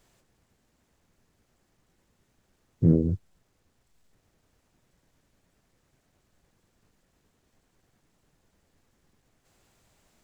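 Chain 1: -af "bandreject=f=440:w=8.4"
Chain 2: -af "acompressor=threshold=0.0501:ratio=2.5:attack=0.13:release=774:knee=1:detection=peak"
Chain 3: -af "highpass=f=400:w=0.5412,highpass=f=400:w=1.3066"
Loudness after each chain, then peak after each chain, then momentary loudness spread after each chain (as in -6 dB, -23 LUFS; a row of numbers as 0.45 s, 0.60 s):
-25.0 LUFS, -33.5 LUFS, -36.5 LUFS; -9.5 dBFS, -19.5 dBFS, -19.5 dBFS; 10 LU, 8 LU, 8 LU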